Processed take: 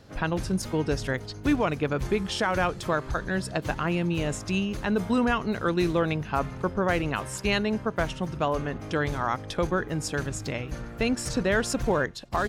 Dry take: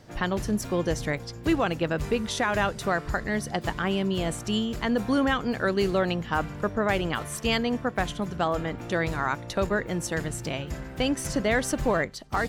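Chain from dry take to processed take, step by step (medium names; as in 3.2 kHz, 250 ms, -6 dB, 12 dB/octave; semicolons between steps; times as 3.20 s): pitch shift -2 st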